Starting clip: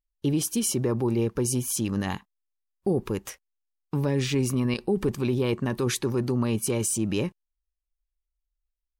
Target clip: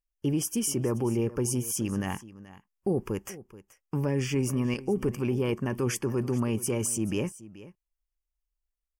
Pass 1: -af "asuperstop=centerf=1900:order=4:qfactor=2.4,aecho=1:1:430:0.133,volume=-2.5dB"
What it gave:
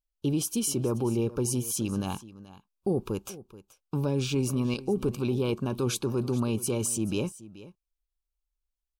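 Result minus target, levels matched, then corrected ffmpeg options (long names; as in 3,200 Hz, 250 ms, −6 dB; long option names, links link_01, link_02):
2,000 Hz band −3.5 dB
-af "asuperstop=centerf=3900:order=4:qfactor=2.4,aecho=1:1:430:0.133,volume=-2.5dB"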